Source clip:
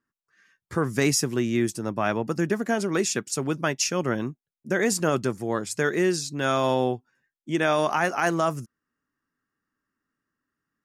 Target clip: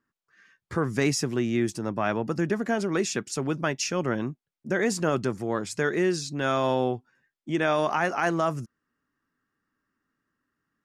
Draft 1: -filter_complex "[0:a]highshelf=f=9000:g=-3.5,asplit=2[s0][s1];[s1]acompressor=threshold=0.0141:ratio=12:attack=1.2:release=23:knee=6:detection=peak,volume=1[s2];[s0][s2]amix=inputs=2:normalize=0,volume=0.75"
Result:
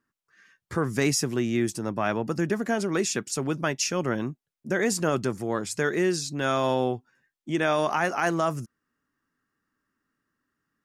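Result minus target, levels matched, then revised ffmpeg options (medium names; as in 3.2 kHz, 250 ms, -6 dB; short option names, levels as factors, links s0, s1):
8 kHz band +3.0 dB
-filter_complex "[0:a]highshelf=f=9000:g=-15,asplit=2[s0][s1];[s1]acompressor=threshold=0.0141:ratio=12:attack=1.2:release=23:knee=6:detection=peak,volume=1[s2];[s0][s2]amix=inputs=2:normalize=0,volume=0.75"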